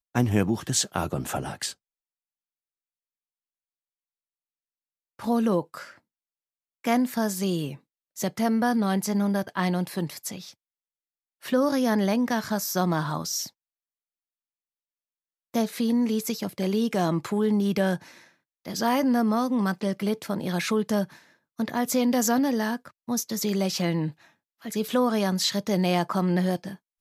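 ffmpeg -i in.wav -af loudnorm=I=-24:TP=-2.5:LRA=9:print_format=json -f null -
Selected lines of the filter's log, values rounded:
"input_i" : "-26.0",
"input_tp" : "-8.8",
"input_lra" : "4.4",
"input_thresh" : "-36.6",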